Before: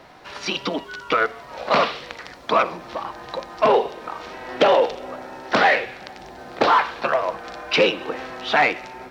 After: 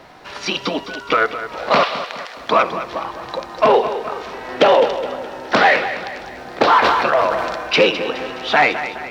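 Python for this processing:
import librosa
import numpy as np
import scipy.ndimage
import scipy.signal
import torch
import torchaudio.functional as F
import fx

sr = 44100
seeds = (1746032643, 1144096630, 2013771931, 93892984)

y = fx.highpass(x, sr, hz=600.0, slope=24, at=(1.83, 2.37))
y = fx.echo_feedback(y, sr, ms=209, feedback_pct=48, wet_db=-11.5)
y = fx.sustainer(y, sr, db_per_s=30.0, at=(6.82, 7.78), fade=0.02)
y = y * librosa.db_to_amplitude(3.5)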